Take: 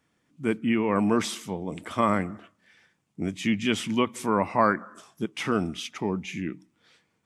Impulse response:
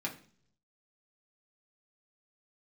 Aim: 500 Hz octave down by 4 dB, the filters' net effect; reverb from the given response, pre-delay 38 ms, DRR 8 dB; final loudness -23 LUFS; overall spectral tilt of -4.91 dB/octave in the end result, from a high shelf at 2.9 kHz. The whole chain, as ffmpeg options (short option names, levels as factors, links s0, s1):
-filter_complex "[0:a]equalizer=f=500:t=o:g=-5,highshelf=f=2900:g=-5,asplit=2[s0][s1];[1:a]atrim=start_sample=2205,adelay=38[s2];[s1][s2]afir=irnorm=-1:irlink=0,volume=0.299[s3];[s0][s3]amix=inputs=2:normalize=0,volume=1.78"